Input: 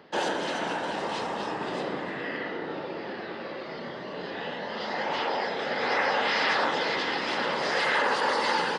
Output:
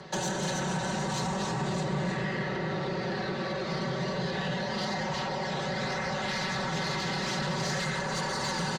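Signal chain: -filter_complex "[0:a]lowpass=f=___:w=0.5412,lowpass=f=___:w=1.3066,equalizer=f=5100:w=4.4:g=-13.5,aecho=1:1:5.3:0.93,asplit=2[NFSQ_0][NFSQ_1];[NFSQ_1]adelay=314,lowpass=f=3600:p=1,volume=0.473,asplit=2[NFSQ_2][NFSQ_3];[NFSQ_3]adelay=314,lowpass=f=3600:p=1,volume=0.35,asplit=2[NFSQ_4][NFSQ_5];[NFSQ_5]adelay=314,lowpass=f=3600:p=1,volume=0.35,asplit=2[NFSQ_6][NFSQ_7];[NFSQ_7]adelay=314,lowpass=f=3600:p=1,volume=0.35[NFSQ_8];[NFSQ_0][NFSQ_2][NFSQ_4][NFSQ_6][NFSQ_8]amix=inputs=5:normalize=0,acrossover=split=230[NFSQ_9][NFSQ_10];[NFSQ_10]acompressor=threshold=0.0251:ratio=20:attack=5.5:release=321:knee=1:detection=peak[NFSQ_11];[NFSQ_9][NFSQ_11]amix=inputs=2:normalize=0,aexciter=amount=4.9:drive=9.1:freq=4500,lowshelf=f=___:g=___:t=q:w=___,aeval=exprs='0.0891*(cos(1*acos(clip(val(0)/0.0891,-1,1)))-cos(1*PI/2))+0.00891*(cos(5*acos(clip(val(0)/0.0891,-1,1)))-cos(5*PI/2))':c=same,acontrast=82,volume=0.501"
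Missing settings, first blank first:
6900, 6900, 170, 10.5, 1.5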